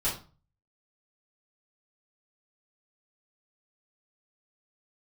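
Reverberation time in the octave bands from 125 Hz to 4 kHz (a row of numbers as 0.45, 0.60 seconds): 0.60, 0.45, 0.35, 0.35, 0.30, 0.30 seconds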